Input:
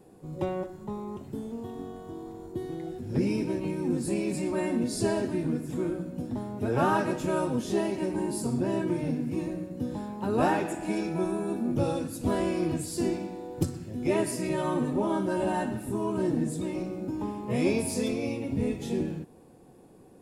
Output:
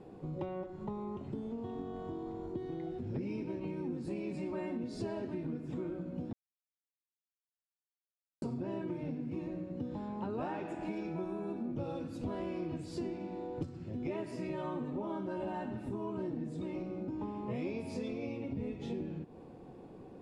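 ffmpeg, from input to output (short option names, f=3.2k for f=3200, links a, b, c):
-filter_complex "[0:a]asplit=3[a][b][c];[a]atrim=end=6.33,asetpts=PTS-STARTPTS,afade=t=out:st=6.326:d=0.004:c=hsin[d];[b]atrim=start=6.33:end=8.42,asetpts=PTS-STARTPTS,volume=0[e];[c]atrim=start=8.42,asetpts=PTS-STARTPTS,afade=t=in:d=0.004:c=hsin[f];[d][e][f]concat=n=3:v=0:a=1,lowpass=3.4k,equalizer=f=1.7k:t=o:w=0.27:g=-4,acompressor=threshold=-41dB:ratio=4,volume=3dB"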